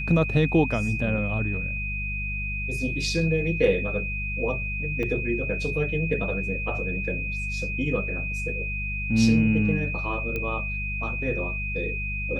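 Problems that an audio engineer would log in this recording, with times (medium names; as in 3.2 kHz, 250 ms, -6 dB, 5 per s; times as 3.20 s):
hum 50 Hz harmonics 4 -32 dBFS
whine 2.5 kHz -30 dBFS
5.03 s: dropout 4.3 ms
10.36 s: pop -17 dBFS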